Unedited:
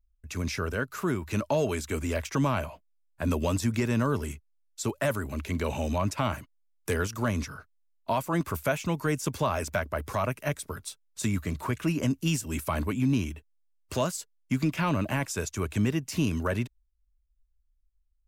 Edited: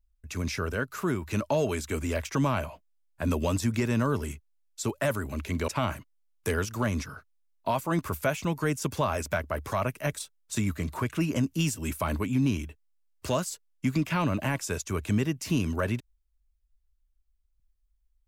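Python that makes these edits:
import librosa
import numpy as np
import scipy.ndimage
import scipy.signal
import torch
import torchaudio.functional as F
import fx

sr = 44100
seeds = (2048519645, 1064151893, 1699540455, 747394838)

y = fx.edit(x, sr, fx.cut(start_s=5.68, length_s=0.42),
    fx.cut(start_s=10.61, length_s=0.25), tone=tone)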